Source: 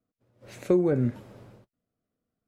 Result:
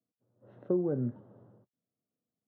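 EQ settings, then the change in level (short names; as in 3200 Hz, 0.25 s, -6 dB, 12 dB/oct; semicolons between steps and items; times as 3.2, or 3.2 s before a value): running mean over 19 samples; HPF 110 Hz 24 dB/oct; air absorption 330 m; -6.0 dB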